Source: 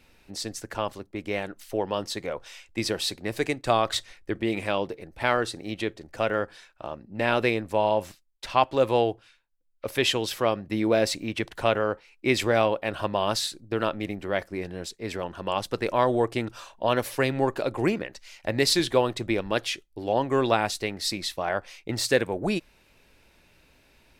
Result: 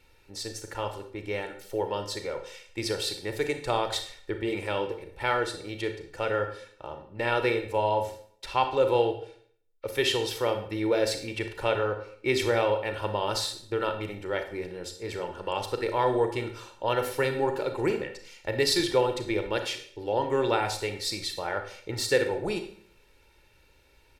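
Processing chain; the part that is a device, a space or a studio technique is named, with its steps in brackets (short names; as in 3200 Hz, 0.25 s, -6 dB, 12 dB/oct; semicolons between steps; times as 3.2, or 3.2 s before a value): microphone above a desk (comb 2.2 ms, depth 59%; reverb RT60 0.55 s, pre-delay 31 ms, DRR 6.5 dB); gain -4.5 dB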